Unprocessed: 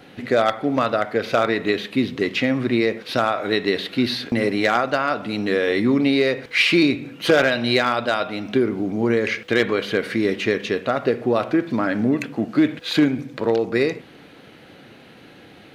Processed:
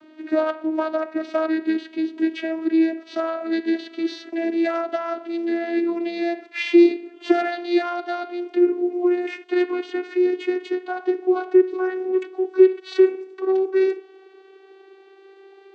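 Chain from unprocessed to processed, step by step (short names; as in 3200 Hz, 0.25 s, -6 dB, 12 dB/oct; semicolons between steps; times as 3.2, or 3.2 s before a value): vocoder on a gliding note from D#4, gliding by +4 st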